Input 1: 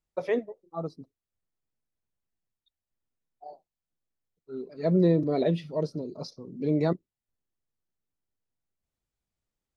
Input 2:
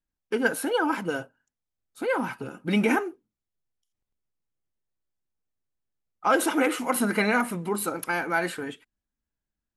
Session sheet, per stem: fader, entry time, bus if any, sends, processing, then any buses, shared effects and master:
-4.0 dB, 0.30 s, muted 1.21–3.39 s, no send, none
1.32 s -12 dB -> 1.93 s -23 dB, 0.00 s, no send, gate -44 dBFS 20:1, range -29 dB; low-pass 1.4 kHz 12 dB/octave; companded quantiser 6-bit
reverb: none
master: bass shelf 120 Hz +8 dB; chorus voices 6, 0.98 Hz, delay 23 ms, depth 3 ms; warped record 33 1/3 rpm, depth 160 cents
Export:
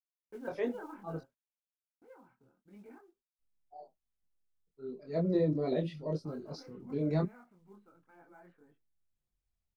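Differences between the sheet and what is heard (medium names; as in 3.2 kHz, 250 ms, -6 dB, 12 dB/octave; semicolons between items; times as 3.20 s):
stem 2 -12.0 dB -> -18.5 dB; master: missing warped record 33 1/3 rpm, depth 160 cents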